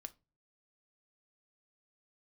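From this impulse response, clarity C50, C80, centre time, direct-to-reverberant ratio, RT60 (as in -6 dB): 22.0 dB, 29.5 dB, 2 ms, 9.0 dB, 0.30 s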